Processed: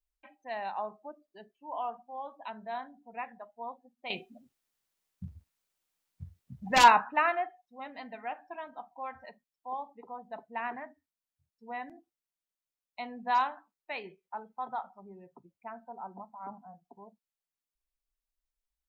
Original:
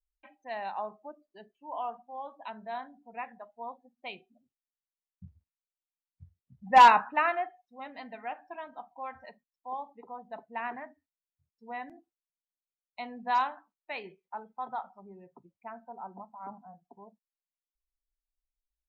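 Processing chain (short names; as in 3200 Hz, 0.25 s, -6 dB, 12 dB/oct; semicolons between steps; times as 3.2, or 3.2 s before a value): 4.1–6.84 spectral compressor 2:1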